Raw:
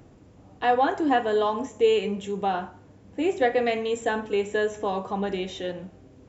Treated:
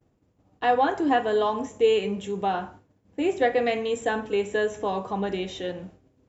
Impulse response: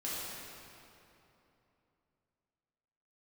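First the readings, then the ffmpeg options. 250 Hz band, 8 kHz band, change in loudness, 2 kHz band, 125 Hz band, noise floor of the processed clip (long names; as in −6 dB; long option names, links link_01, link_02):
0.0 dB, can't be measured, 0.0 dB, 0.0 dB, 0.0 dB, −67 dBFS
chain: -af "agate=range=-33dB:threshold=-41dB:ratio=3:detection=peak"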